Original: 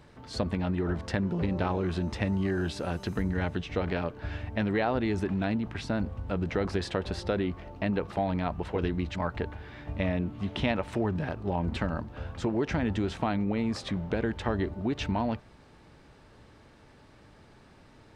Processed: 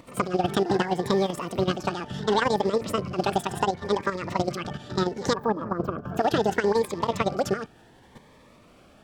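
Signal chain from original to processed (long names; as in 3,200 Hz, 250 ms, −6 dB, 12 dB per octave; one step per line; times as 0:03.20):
loose part that buzzes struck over −32 dBFS, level −37 dBFS
tilt shelving filter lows +5.5 dB, about 1,300 Hz
echo ahead of the sound 163 ms −18 dB
in parallel at −3 dB: downward compressor 6 to 1, threshold −33 dBFS, peak gain reduction 13.5 dB
on the sum: gain on a spectral selection 0:10.72–0:12.40, 880–6,600 Hz −18 dB
change of speed 2.01×
output level in coarse steps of 11 dB
low-shelf EQ 480 Hz −6.5 dB
phaser whose notches keep moving one way rising 0.7 Hz
level +6 dB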